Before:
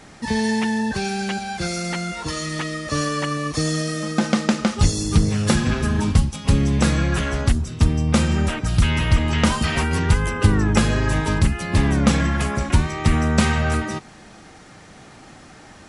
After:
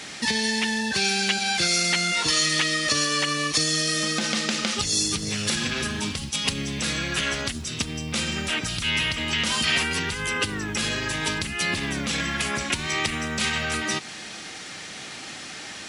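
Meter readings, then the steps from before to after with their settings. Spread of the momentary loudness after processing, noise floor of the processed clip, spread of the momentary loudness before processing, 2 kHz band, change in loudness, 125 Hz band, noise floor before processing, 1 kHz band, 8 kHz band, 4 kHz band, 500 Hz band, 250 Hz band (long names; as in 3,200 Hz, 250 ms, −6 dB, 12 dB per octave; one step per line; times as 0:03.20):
9 LU, −38 dBFS, 7 LU, +2.0 dB, −3.0 dB, −14.5 dB, −45 dBFS, −4.5 dB, +4.0 dB, +6.5 dB, −6.5 dB, −9.0 dB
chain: brickwall limiter −13 dBFS, peak gain reduction 10.5 dB
high-shelf EQ 8,000 Hz +8 dB
downward compressor, threshold −26 dBFS, peak gain reduction 9 dB
log-companded quantiser 8 bits
meter weighting curve D
level +2 dB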